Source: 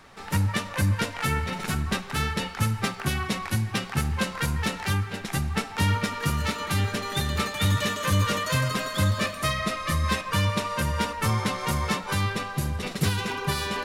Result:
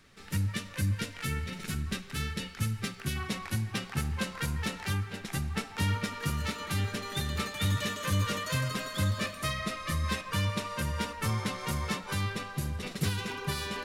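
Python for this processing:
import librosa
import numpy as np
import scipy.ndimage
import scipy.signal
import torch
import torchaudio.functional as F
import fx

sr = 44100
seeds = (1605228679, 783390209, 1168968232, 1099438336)

y = fx.peak_eq(x, sr, hz=840.0, db=fx.steps((0.0, -13.0), (3.16, -3.5)), octaves=1.3)
y = y * librosa.db_to_amplitude(-5.5)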